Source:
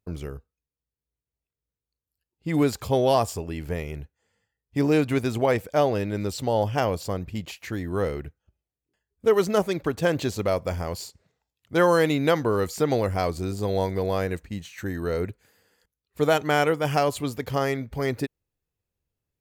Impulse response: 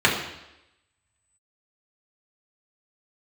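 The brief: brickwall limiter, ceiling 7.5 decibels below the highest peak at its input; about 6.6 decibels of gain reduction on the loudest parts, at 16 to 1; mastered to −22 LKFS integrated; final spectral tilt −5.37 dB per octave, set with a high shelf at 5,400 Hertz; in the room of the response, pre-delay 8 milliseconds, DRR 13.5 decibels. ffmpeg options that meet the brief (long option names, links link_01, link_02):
-filter_complex "[0:a]highshelf=frequency=5400:gain=6,acompressor=threshold=-21dB:ratio=16,alimiter=limit=-18dB:level=0:latency=1,asplit=2[link_01][link_02];[1:a]atrim=start_sample=2205,adelay=8[link_03];[link_02][link_03]afir=irnorm=-1:irlink=0,volume=-33.5dB[link_04];[link_01][link_04]amix=inputs=2:normalize=0,volume=8.5dB"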